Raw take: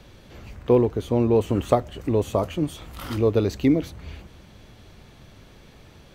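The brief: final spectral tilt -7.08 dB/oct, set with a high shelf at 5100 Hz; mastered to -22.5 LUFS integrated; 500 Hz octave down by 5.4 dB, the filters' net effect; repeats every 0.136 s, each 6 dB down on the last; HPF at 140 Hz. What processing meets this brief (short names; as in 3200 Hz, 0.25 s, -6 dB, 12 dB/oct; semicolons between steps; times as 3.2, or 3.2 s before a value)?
HPF 140 Hz; bell 500 Hz -6.5 dB; high shelf 5100 Hz -8.5 dB; feedback echo 0.136 s, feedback 50%, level -6 dB; gain +3.5 dB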